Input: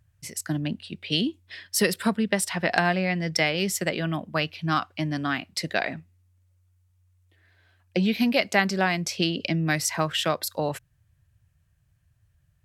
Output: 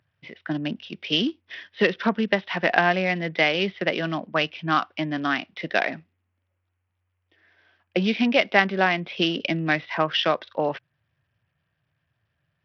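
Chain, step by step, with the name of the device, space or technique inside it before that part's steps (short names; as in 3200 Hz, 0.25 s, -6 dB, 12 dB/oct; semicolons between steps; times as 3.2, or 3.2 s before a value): Bluetooth headset (HPF 230 Hz 12 dB/oct; downsampling 8000 Hz; gain +3.5 dB; SBC 64 kbps 44100 Hz)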